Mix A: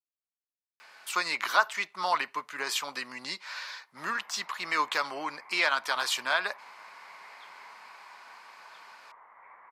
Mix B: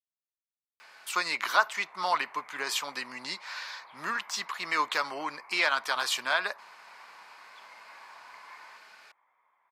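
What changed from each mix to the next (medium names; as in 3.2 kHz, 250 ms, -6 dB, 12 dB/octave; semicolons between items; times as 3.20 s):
background: entry -2.50 s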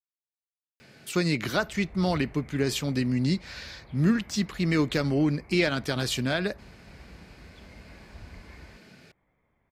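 master: remove resonant high-pass 1 kHz, resonance Q 4.1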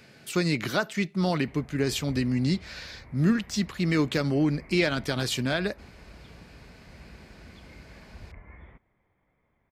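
speech: entry -0.80 s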